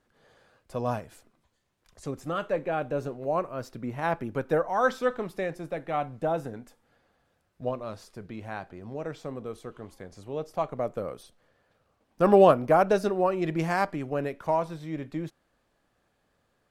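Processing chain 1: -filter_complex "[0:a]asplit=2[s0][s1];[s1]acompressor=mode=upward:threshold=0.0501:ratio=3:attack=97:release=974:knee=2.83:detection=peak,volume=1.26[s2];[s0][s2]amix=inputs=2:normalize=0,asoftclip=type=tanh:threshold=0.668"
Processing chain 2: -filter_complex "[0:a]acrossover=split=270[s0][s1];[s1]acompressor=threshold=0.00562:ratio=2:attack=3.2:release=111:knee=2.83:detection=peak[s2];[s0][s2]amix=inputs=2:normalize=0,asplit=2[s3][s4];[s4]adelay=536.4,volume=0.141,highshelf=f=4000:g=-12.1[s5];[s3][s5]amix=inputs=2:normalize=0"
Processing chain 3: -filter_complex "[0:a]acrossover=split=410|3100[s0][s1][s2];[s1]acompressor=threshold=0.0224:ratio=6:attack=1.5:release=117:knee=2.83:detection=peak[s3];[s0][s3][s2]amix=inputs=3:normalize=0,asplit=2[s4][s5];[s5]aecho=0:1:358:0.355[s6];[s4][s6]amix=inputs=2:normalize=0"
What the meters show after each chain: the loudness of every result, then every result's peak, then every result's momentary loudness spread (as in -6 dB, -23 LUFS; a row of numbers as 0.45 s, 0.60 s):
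-22.0 LUFS, -37.0 LUFS, -33.0 LUFS; -4.0 dBFS, -16.5 dBFS, -13.5 dBFS; 16 LU, 17 LU, 15 LU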